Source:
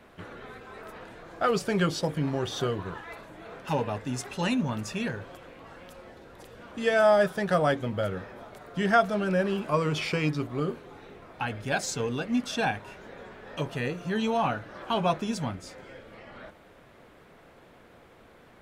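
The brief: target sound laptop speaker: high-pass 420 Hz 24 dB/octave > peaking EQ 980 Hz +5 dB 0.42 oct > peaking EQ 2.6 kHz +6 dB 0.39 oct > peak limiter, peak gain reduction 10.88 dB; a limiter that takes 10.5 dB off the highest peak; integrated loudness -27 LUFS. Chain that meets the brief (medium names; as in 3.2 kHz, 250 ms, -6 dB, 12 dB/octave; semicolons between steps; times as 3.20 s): peak limiter -20.5 dBFS; high-pass 420 Hz 24 dB/octave; peaking EQ 980 Hz +5 dB 0.42 oct; peaking EQ 2.6 kHz +6 dB 0.39 oct; trim +11.5 dB; peak limiter -16 dBFS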